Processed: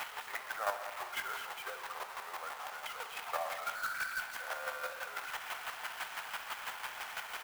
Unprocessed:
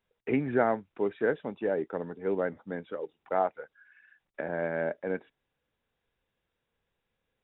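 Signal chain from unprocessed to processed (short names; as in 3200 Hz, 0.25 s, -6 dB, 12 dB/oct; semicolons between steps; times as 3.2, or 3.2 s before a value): zero-crossing step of -26.5 dBFS; inverse Chebyshev high-pass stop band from 350 Hz, stop band 50 dB; high shelf 2600 Hz -9.5 dB; pitch shift -2 st; chopper 6 Hz, depth 60%, duty 20%; multi-head echo 65 ms, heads all three, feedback 48%, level -15 dB; reverb RT60 0.60 s, pre-delay 8 ms, DRR 12 dB; clock jitter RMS 0.024 ms; gain +2 dB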